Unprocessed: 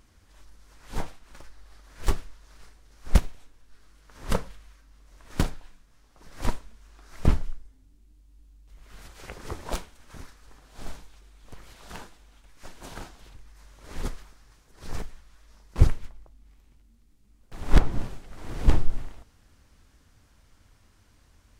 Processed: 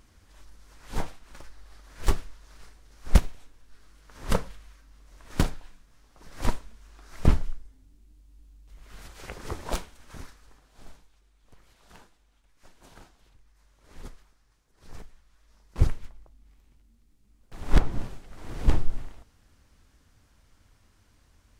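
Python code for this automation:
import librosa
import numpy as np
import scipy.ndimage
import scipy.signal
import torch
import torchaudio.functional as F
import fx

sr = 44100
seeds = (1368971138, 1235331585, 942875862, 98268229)

y = fx.gain(x, sr, db=fx.line((10.26, 1.0), (10.88, -11.0), (14.87, -11.0), (16.06, -2.0)))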